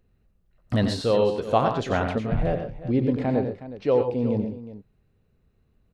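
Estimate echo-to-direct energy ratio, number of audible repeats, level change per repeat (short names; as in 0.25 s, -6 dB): -5.0 dB, 3, no steady repeat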